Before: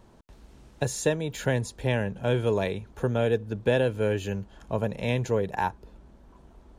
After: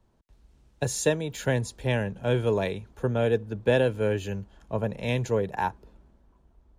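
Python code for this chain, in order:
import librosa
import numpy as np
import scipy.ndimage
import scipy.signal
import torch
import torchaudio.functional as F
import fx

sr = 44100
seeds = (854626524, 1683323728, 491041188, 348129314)

y = fx.band_widen(x, sr, depth_pct=40)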